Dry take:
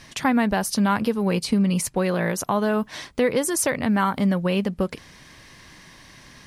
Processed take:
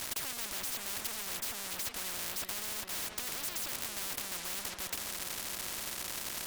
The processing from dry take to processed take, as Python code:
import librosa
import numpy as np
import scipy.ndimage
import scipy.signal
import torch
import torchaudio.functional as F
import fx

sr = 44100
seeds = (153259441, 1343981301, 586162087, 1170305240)

p1 = fx.fuzz(x, sr, gain_db=46.0, gate_db=-43.0)
p2 = x + (p1 * librosa.db_to_amplitude(-6.5))
p3 = p2 + 0.51 * np.pad(p2, (int(3.1 * sr / 1000.0), 0))[:len(p2)]
p4 = np.clip(10.0 ** (18.5 / 20.0) * p3, -1.0, 1.0) / 10.0 ** (18.5 / 20.0)
p5 = fx.echo_filtered(p4, sr, ms=402, feedback_pct=76, hz=2600.0, wet_db=-14.0)
p6 = fx.spectral_comp(p5, sr, ratio=10.0)
y = p6 * librosa.db_to_amplitude(-5.0)